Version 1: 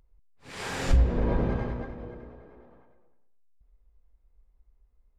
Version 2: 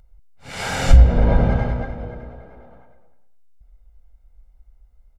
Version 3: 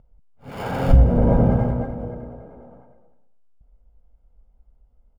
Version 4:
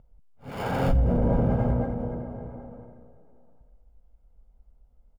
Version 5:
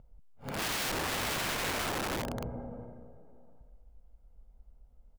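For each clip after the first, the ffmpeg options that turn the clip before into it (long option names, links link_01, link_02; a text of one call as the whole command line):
ffmpeg -i in.wav -af "aecho=1:1:1.4:0.56,volume=8dB" out.wav
ffmpeg -i in.wav -filter_complex "[0:a]equalizer=frequency=125:width_type=o:width=1:gain=7,equalizer=frequency=250:width_type=o:width=1:gain=8,equalizer=frequency=500:width_type=o:width=1:gain=6,equalizer=frequency=1000:width_type=o:width=1:gain=4,equalizer=frequency=2000:width_type=o:width=1:gain=-6,equalizer=frequency=4000:width_type=o:width=1:gain=4,acrossover=split=2800[link_01][link_02];[link_02]acrusher=samples=22:mix=1:aa=0.000001[link_03];[link_01][link_03]amix=inputs=2:normalize=0,volume=-5.5dB" out.wav
ffmpeg -i in.wav -filter_complex "[0:a]alimiter=limit=-13dB:level=0:latency=1:release=70,asplit=2[link_01][link_02];[link_02]adelay=758,volume=-15dB,highshelf=frequency=4000:gain=-17.1[link_03];[link_01][link_03]amix=inputs=2:normalize=0,volume=-1.5dB" out.wav
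ffmpeg -i in.wav -af "aeval=exprs='(mod(26.6*val(0)+1,2)-1)/26.6':channel_layout=same" out.wav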